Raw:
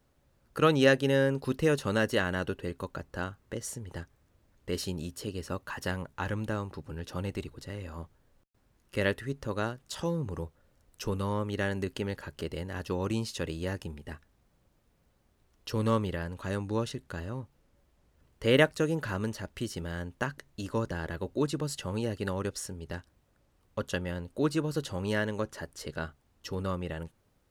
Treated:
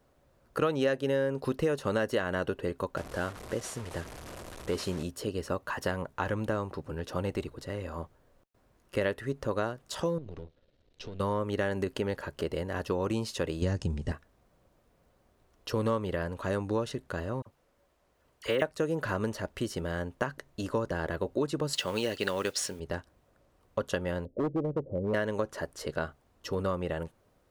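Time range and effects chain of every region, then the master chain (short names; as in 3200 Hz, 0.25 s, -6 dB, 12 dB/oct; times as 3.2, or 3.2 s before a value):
2.97–5.03 delta modulation 64 kbps, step -41 dBFS + overloaded stage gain 26.5 dB + mismatched tape noise reduction encoder only
10.18–11.2 half-wave gain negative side -12 dB + EQ curve 380 Hz 0 dB, 1100 Hz -11 dB, 3900 Hz +7 dB, 12000 Hz -25 dB + compressor, threshold -39 dBFS
13.62–14.12 LPF 7400 Hz 24 dB/oct + tone controls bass +13 dB, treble +12 dB
17.42–18.62 low shelf 390 Hz -9 dB + de-esser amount 80% + dispersion lows, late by 43 ms, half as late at 1500 Hz
21.73–22.8 weighting filter D + modulation noise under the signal 20 dB
24.25–25.14 Chebyshev low-pass 570 Hz, order 4 + hard clip -27.5 dBFS
whole clip: bell 680 Hz +8 dB 2.1 oct; notch 840 Hz, Q 12; compressor 4:1, threshold -26 dBFS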